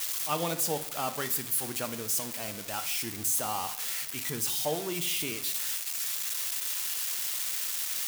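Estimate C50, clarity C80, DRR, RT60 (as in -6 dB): 12.5 dB, 15.5 dB, 9.0 dB, 0.70 s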